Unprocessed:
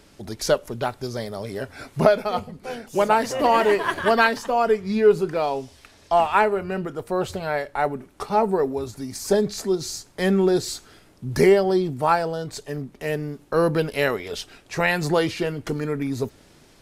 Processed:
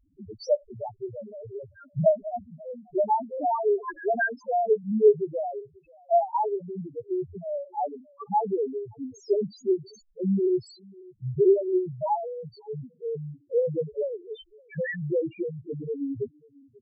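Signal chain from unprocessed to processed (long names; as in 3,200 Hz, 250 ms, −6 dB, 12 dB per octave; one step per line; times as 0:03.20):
single-tap delay 540 ms −23.5 dB
transient designer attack +6 dB, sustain −1 dB
spectral peaks only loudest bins 1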